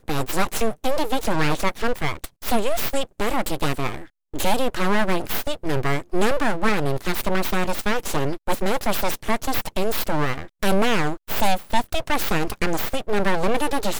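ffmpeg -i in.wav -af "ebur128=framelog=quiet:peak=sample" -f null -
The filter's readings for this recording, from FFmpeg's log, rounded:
Integrated loudness:
  I:         -24.3 LUFS
  Threshold: -34.3 LUFS
Loudness range:
  LRA:         1.5 LU
  Threshold: -44.4 LUFS
  LRA low:   -25.1 LUFS
  LRA high:  -23.6 LUFS
Sample peak:
  Peak:       -6.1 dBFS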